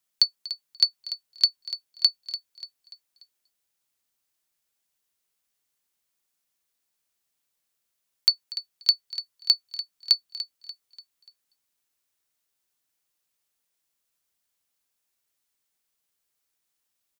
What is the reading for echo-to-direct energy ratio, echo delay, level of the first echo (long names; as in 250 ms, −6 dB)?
−12.0 dB, 292 ms, −13.0 dB